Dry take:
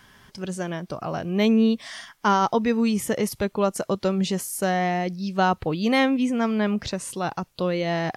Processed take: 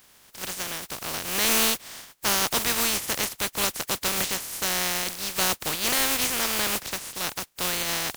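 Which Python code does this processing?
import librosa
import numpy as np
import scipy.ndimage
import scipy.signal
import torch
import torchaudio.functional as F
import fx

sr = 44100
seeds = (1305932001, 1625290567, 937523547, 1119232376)

y = fx.spec_flatten(x, sr, power=0.18)
y = 10.0 ** (-10.5 / 20.0) * (np.abs((y / 10.0 ** (-10.5 / 20.0) + 3.0) % 4.0 - 2.0) - 1.0)
y = y * librosa.db_to_amplitude(-2.5)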